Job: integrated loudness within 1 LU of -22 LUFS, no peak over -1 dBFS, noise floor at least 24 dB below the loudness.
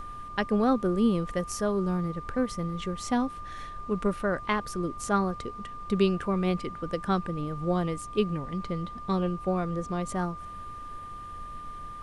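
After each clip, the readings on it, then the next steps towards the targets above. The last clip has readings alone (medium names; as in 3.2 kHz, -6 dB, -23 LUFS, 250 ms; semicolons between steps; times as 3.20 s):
steady tone 1.2 kHz; tone level -39 dBFS; noise floor -41 dBFS; noise floor target -54 dBFS; loudness -29.5 LUFS; peak level -12.5 dBFS; loudness target -22.0 LUFS
-> band-stop 1.2 kHz, Q 30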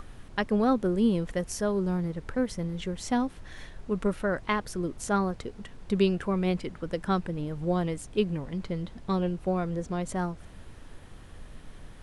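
steady tone not found; noise floor -48 dBFS; noise floor target -54 dBFS
-> noise print and reduce 6 dB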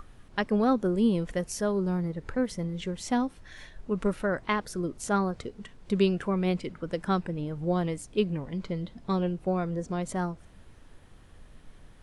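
noise floor -53 dBFS; noise floor target -54 dBFS
-> noise print and reduce 6 dB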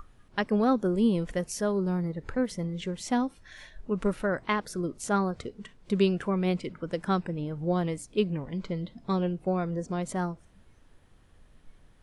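noise floor -59 dBFS; loudness -29.5 LUFS; peak level -12.5 dBFS; loudness target -22.0 LUFS
-> trim +7.5 dB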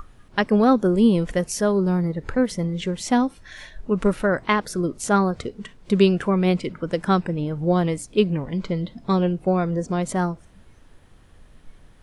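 loudness -22.0 LUFS; peak level -5.0 dBFS; noise floor -51 dBFS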